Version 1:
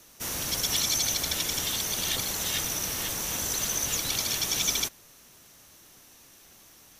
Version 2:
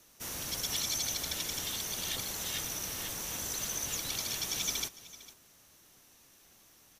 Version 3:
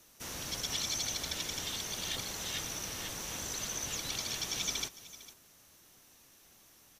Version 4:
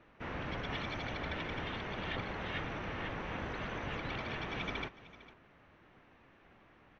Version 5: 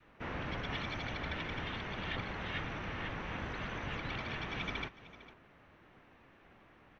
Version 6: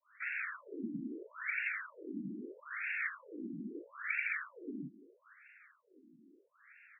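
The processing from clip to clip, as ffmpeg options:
-af "aecho=1:1:453:0.133,volume=0.447"
-filter_complex "[0:a]acrossover=split=7500[s0][s1];[s1]acompressor=threshold=0.00398:ratio=4:attack=1:release=60[s2];[s0][s2]amix=inputs=2:normalize=0"
-af "lowpass=f=2300:w=0.5412,lowpass=f=2300:w=1.3066,volume=1.88"
-af "adynamicequalizer=threshold=0.00251:dfrequency=500:dqfactor=0.7:tfrequency=500:tqfactor=0.7:attack=5:release=100:ratio=0.375:range=2:mode=cutabove:tftype=bell,volume=1.12"
-af "asuperstop=centerf=770:order=4:qfactor=0.56,asubboost=boost=5.5:cutoff=81,afftfilt=real='re*between(b*sr/1024,240*pow(2000/240,0.5+0.5*sin(2*PI*0.77*pts/sr))/1.41,240*pow(2000/240,0.5+0.5*sin(2*PI*0.77*pts/sr))*1.41)':imag='im*between(b*sr/1024,240*pow(2000/240,0.5+0.5*sin(2*PI*0.77*pts/sr))/1.41,240*pow(2000/240,0.5+0.5*sin(2*PI*0.77*pts/sr))*1.41)':win_size=1024:overlap=0.75,volume=3.55"

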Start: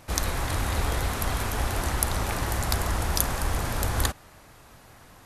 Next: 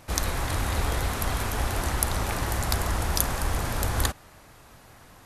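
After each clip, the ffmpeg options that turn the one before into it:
-af anull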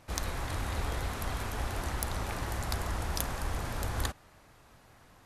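-af "aeval=exprs='0.841*(cos(1*acos(clip(val(0)/0.841,-1,1)))-cos(1*PI/2))+0.376*(cos(2*acos(clip(val(0)/0.841,-1,1)))-cos(2*PI/2))+0.0944*(cos(4*acos(clip(val(0)/0.841,-1,1)))-cos(4*PI/2))':c=same,highshelf=f=8200:g=-6,volume=0.447"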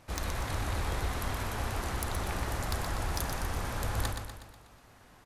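-filter_complex "[0:a]asoftclip=type=hard:threshold=0.0631,asplit=2[s0][s1];[s1]aecho=0:1:122|244|366|488|610|732:0.501|0.261|0.136|0.0705|0.0366|0.0191[s2];[s0][s2]amix=inputs=2:normalize=0"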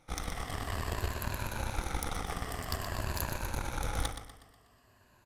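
-af "afftfilt=real='re*pow(10,10/40*sin(2*PI*(1.4*log(max(b,1)*sr/1024/100)/log(2)-(-0.51)*(pts-256)/sr)))':imag='im*pow(10,10/40*sin(2*PI*(1.4*log(max(b,1)*sr/1024/100)/log(2)-(-0.51)*(pts-256)/sr)))':win_size=1024:overlap=0.75,aeval=exprs='0.168*(cos(1*acos(clip(val(0)/0.168,-1,1)))-cos(1*PI/2))+0.00668*(cos(5*acos(clip(val(0)/0.168,-1,1)))-cos(5*PI/2))+0.0133*(cos(6*acos(clip(val(0)/0.168,-1,1)))-cos(6*PI/2))+0.0168*(cos(7*acos(clip(val(0)/0.168,-1,1)))-cos(7*PI/2))':c=same,volume=0.794"

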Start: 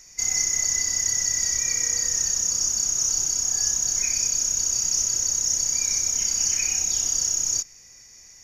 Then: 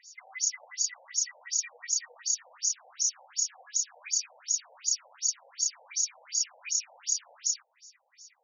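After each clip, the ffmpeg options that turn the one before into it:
-filter_complex "[0:a]asplit=2[s0][s1];[s1]alimiter=limit=0.126:level=0:latency=1,volume=0.944[s2];[s0][s2]amix=inputs=2:normalize=0,afftfilt=real='re*between(b*sr/1024,640*pow(5500/640,0.5+0.5*sin(2*PI*2.7*pts/sr))/1.41,640*pow(5500/640,0.5+0.5*sin(2*PI*2.7*pts/sr))*1.41)':imag='im*between(b*sr/1024,640*pow(5500/640,0.5+0.5*sin(2*PI*2.7*pts/sr))/1.41,640*pow(5500/640,0.5+0.5*sin(2*PI*2.7*pts/sr))*1.41)':win_size=1024:overlap=0.75,volume=0.501"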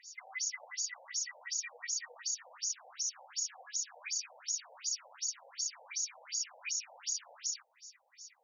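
-af "alimiter=level_in=1.26:limit=0.0631:level=0:latency=1:release=71,volume=0.794"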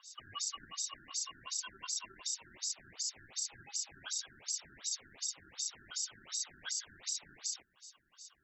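-af "aeval=exprs='val(0)*sin(2*PI*870*n/s)':c=same,volume=1.12"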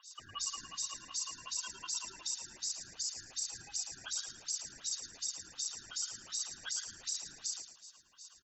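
-filter_complex "[0:a]bandreject=f=2200:w=7.7,asplit=2[s0][s1];[s1]asplit=4[s2][s3][s4][s5];[s2]adelay=110,afreqshift=-54,volume=0.355[s6];[s3]adelay=220,afreqshift=-108,volume=0.117[s7];[s4]adelay=330,afreqshift=-162,volume=0.0385[s8];[s5]adelay=440,afreqshift=-216,volume=0.0127[s9];[s6][s7][s8][s9]amix=inputs=4:normalize=0[s10];[s0][s10]amix=inputs=2:normalize=0"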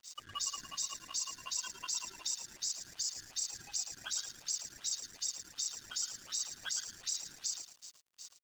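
-filter_complex "[0:a]asplit=2[s0][s1];[s1]acompressor=threshold=0.00398:ratio=6,volume=1[s2];[s0][s2]amix=inputs=2:normalize=0,aeval=exprs='sgn(val(0))*max(abs(val(0))-0.00224,0)':c=same"

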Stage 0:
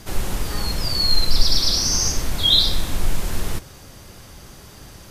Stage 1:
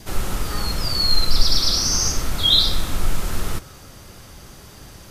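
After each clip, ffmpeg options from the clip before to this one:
-af "adynamicequalizer=threshold=0.00158:dfrequency=1300:dqfactor=7.1:tfrequency=1300:tqfactor=7.1:attack=5:release=100:ratio=0.375:range=4:mode=boostabove:tftype=bell"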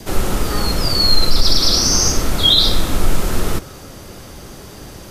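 -filter_complex "[0:a]acrossover=split=220|640|4900[s0][s1][s2][s3];[s1]acontrast=61[s4];[s0][s4][s2][s3]amix=inputs=4:normalize=0,alimiter=level_in=2:limit=0.891:release=50:level=0:latency=1,volume=0.891"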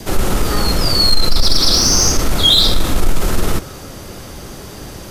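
-af "acontrast=58,volume=0.75"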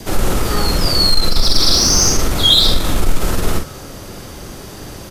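-filter_complex "[0:a]asplit=2[s0][s1];[s1]adelay=46,volume=0.473[s2];[s0][s2]amix=inputs=2:normalize=0,volume=0.891"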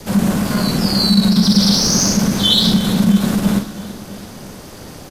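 -af "aeval=exprs='val(0)*sin(2*PI*200*n/s)':c=same,aecho=1:1:331|662|993|1324|1655:0.158|0.0808|0.0412|0.021|0.0107"

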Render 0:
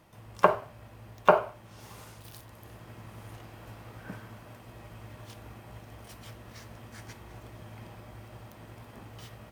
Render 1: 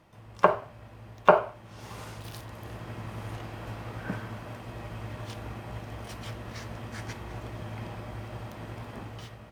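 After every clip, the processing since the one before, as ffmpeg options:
-af "highshelf=f=8700:g=-11.5,dynaudnorm=f=120:g=9:m=2.51"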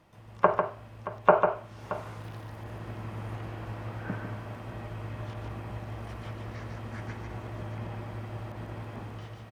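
-filter_complex "[0:a]aecho=1:1:147|625:0.501|0.168,acrossover=split=2600[s0][s1];[s1]acompressor=threshold=0.00126:ratio=4:attack=1:release=60[s2];[s0][s2]amix=inputs=2:normalize=0,volume=0.841"

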